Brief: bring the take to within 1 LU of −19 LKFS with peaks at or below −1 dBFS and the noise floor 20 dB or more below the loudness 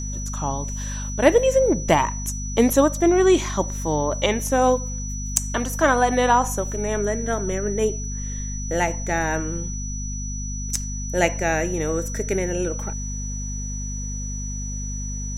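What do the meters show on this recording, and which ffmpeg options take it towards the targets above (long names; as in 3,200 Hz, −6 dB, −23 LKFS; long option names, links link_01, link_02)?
mains hum 50 Hz; hum harmonics up to 250 Hz; level of the hum −27 dBFS; interfering tone 5,900 Hz; level of the tone −33 dBFS; integrated loudness −23.0 LKFS; sample peak −2.5 dBFS; target loudness −19.0 LKFS
→ -af "bandreject=frequency=50:width_type=h:width=6,bandreject=frequency=100:width_type=h:width=6,bandreject=frequency=150:width_type=h:width=6,bandreject=frequency=200:width_type=h:width=6,bandreject=frequency=250:width_type=h:width=6"
-af "bandreject=frequency=5900:width=30"
-af "volume=4dB,alimiter=limit=-1dB:level=0:latency=1"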